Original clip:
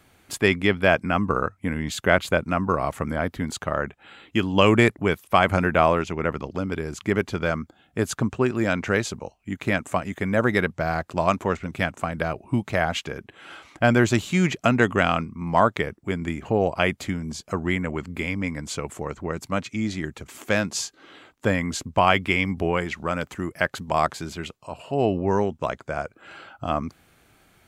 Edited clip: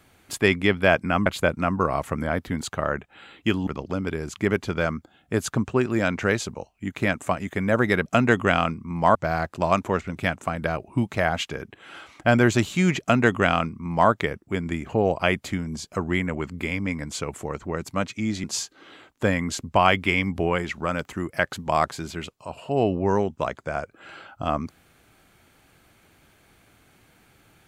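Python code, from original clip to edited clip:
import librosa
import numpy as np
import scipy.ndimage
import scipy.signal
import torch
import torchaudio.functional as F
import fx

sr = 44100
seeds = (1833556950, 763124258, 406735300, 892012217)

y = fx.edit(x, sr, fx.cut(start_s=1.26, length_s=0.89),
    fx.cut(start_s=4.56, length_s=1.76),
    fx.duplicate(start_s=14.57, length_s=1.09, to_s=10.71),
    fx.cut(start_s=20.0, length_s=0.66), tone=tone)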